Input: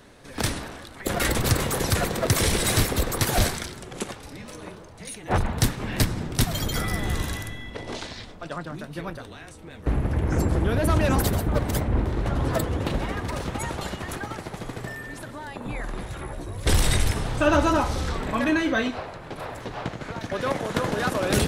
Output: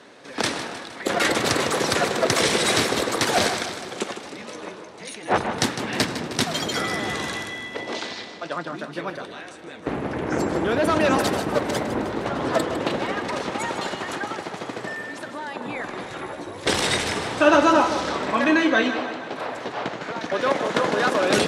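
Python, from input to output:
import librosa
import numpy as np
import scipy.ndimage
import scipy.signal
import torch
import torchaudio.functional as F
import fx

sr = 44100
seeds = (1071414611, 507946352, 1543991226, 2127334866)

y = fx.bandpass_edges(x, sr, low_hz=270.0, high_hz=6600.0)
y = fx.echo_feedback(y, sr, ms=155, feedback_pct=57, wet_db=-11)
y = F.gain(torch.from_numpy(y), 5.0).numpy()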